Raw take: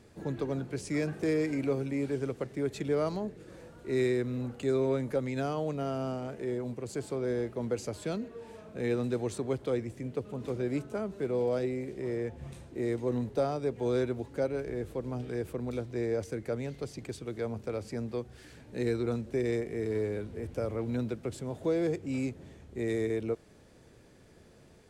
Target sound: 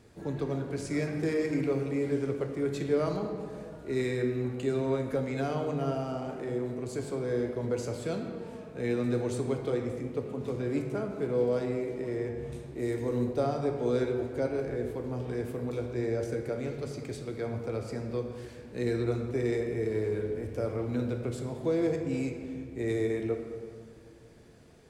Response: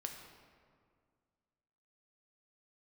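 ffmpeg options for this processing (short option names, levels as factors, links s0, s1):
-filter_complex "[0:a]asettb=1/sr,asplit=3[s0][s1][s2];[s0]atrim=end=12.794[s3];[s1]atrim=start=12.79:end=13.26,asetpts=PTS-STARTPTS,afade=t=in:d=0.004:c=qsin,afade=t=out:st=0.466:d=0.004:c=qsin,highshelf=f=8800:g=11[s4];[s2]atrim=start=13.256[s5];[s3][s4]acrossfade=d=0.004:c1=hsin:c2=qsin[s6];[s6][s5]acrossfade=d=0.004:c1=qsin:c2=hsin[s7];[1:a]atrim=start_sample=2205[s8];[s7][s8]afir=irnorm=-1:irlink=0,volume=1.41"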